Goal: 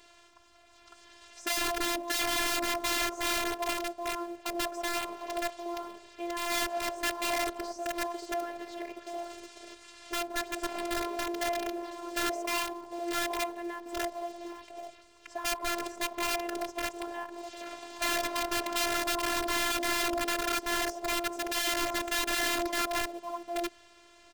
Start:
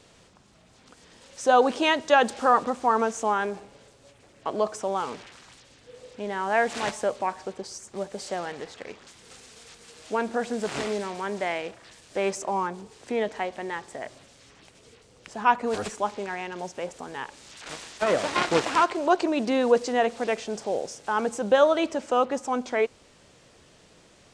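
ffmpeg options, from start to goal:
-filter_complex "[0:a]lowshelf=f=160:t=q:w=3:g=6,acrossover=split=970[a][b];[a]aecho=1:1:170|336|754|824:0.237|0.106|0.398|0.531[c];[b]acompressor=threshold=-46dB:ratio=6[d];[c][d]amix=inputs=2:normalize=0,asplit=2[e][f];[f]highpass=f=720:p=1,volume=15dB,asoftclip=type=tanh:threshold=-9.5dB[g];[e][g]amix=inputs=2:normalize=0,lowpass=f=3.8k:p=1,volume=-6dB,asplit=2[h][i];[i]acrusher=bits=6:dc=4:mix=0:aa=0.000001,volume=-11dB[j];[h][j]amix=inputs=2:normalize=0,aeval=exprs='(mod(6.31*val(0)+1,2)-1)/6.31':c=same,afftfilt=real='hypot(re,im)*cos(PI*b)':imag='0':win_size=512:overlap=0.75,volume=-6dB"

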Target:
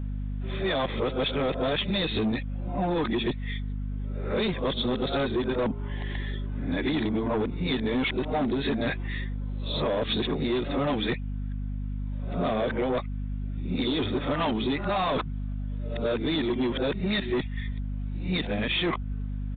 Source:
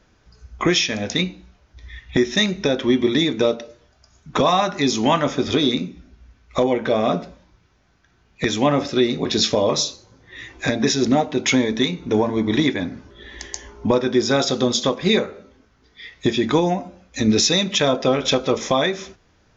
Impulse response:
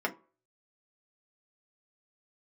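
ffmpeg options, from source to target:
-af "areverse,aeval=exprs='val(0)+0.0316*(sin(2*PI*50*n/s)+sin(2*PI*2*50*n/s)/2+sin(2*PI*3*50*n/s)/3+sin(2*PI*4*50*n/s)/4+sin(2*PI*5*50*n/s)/5)':c=same,aresample=8000,asoftclip=type=tanh:threshold=-16.5dB,aresample=44100,acompressor=threshold=-24dB:ratio=6"

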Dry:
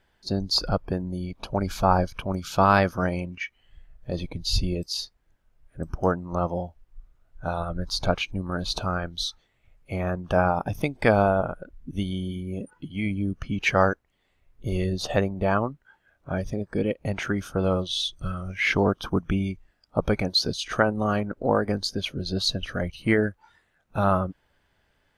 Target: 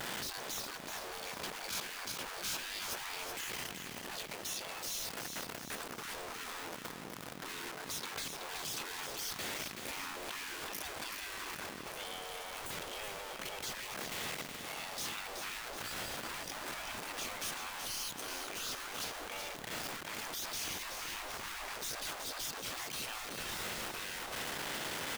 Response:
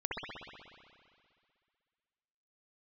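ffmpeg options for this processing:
-filter_complex "[0:a]aeval=exprs='val(0)+0.5*0.0501*sgn(val(0))':c=same,afftfilt=real='re*lt(hypot(re,im),0.0708)':imag='im*lt(hypot(re,im),0.0708)':win_size=1024:overlap=0.75,asplit=2[a][b];[b]aecho=0:1:376|752|1128|1504|1880|2256|2632:0.447|0.241|0.13|0.0703|0.038|0.0205|0.0111[c];[a][c]amix=inputs=2:normalize=0,asoftclip=type=tanh:threshold=-23.5dB,volume=-5.5dB"

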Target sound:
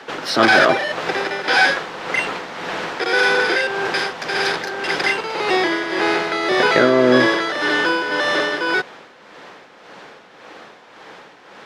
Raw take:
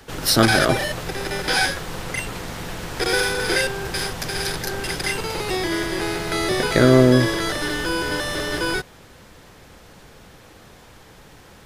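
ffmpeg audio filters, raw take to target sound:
-filter_complex "[0:a]tremolo=f=1.8:d=0.57,asplit=2[a][b];[b]highpass=f=720:p=1,volume=17dB,asoftclip=type=tanh:threshold=-3dB[c];[a][c]amix=inputs=2:normalize=0,lowpass=f=1.9k:p=1,volume=-6dB,acrossover=split=160 6800:gain=0.1 1 0.2[d][e][f];[d][e][f]amix=inputs=3:normalize=0,volume=2dB"

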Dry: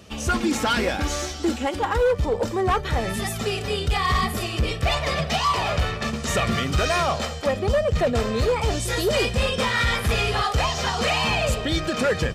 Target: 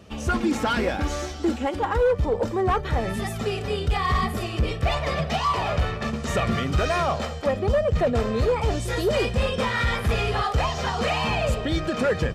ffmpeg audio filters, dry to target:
-af "highshelf=f=2.5k:g=-8.5"

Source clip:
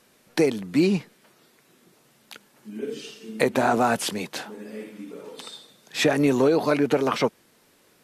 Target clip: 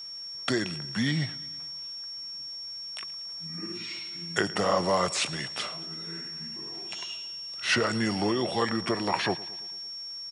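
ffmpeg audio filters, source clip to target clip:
-filter_complex "[0:a]highpass=140,equalizer=f=360:t=o:w=1.7:g=-10.5,asetrate=34354,aresample=44100,aeval=exprs='val(0)+0.0126*sin(2*PI*5500*n/s)':c=same,asplit=2[a][b];[b]aecho=0:1:112|224|336|448|560:0.106|0.0625|0.0369|0.0218|0.0128[c];[a][c]amix=inputs=2:normalize=0"

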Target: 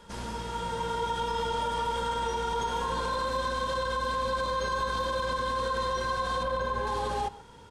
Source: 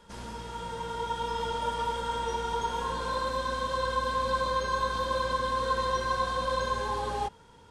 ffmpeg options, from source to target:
-filter_complex "[0:a]asettb=1/sr,asplit=3[a][b][c];[a]atrim=end=6.434[d];[b]atrim=start=6.43:end=6.87,asetpts=PTS-STARTPTS,afade=t=in:d=0.004:c=qsin,afade=t=out:st=0.436:d=0.004:c=qsin,equalizer=f=7.1k:w=0.44:g=-11[e];[c]atrim=start=6.866[f];[d][e]acrossfade=d=0.004:c1=hsin:c2=qsin[g];[g][f]acrossfade=d=0.004:c1=qsin:c2=hsin,alimiter=level_in=2dB:limit=-24dB:level=0:latency=1:release=46,volume=-2dB,asplit=2[h][i];[i]adelay=128.3,volume=-19dB,highshelf=f=4k:g=-2.89[j];[h][j]amix=inputs=2:normalize=0,volume=4dB"

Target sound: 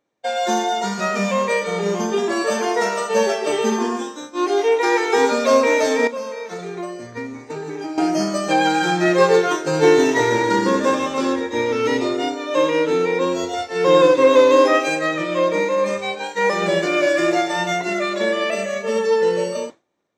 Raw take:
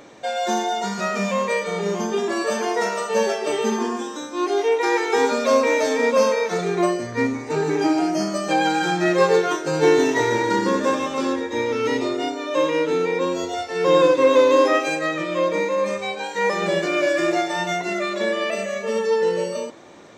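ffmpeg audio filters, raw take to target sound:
-filter_complex "[0:a]agate=range=-33dB:threshold=-26dB:ratio=3:detection=peak,asettb=1/sr,asplit=3[a][b][c];[a]atrim=end=6.074[d];[b]atrim=start=6.07:end=7.98,asetpts=PTS-STARTPTS,afade=t=in:d=0.004:c=qsin,afade=t=out:st=1.906:d=0.004:c=qsin,acompressor=threshold=-33dB:ratio=3[e];[c]atrim=start=7.976[f];[d][e]acrossfade=d=0.004:c1=hsin:c2=qsin[g];[g][f]acrossfade=d=0.004:c1=qsin:c2=hsin,volume=2.5dB"

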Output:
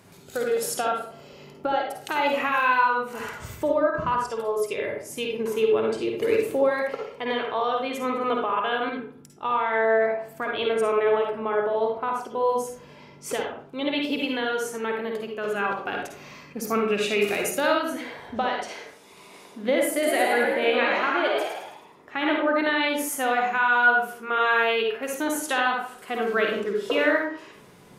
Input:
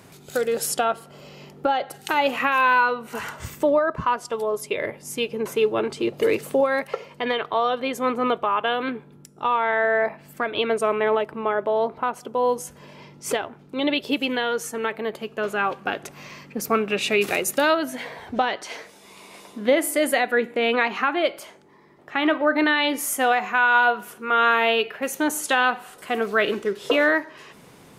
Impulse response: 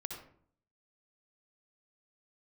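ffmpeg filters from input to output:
-filter_complex "[0:a]asettb=1/sr,asplit=3[a][b][c];[a]atrim=end=19.924[d];[b]atrim=start=19.92:end=22.34,asetpts=PTS-STARTPTS,afade=t=in:d=0.004:c=qsin,afade=t=out:st=2.416:d=0.004:c=qsin,asplit=7[e][f][g][h][i][j][k];[f]adelay=107,afreqshift=68,volume=-4dB[l];[g]adelay=214,afreqshift=136,volume=-10dB[m];[h]adelay=321,afreqshift=204,volume=-16dB[n];[i]adelay=428,afreqshift=272,volume=-22.1dB[o];[j]adelay=535,afreqshift=340,volume=-28.1dB[p];[k]adelay=642,afreqshift=408,volume=-34.1dB[q];[e][l][m][n][o][p][q]amix=inputs=7:normalize=0,atrim=end_sample=106722[r];[c]atrim=start=22.336[s];[d][r]acrossfade=d=0.004:c1=hsin:c2=qsin[t];[t][s]acrossfade=d=0.004:c1=qsin:c2=hsin[u];[1:a]atrim=start_sample=2205,asetrate=52920,aresample=44100[v];[u][v]afir=irnorm=-1:irlink=0"

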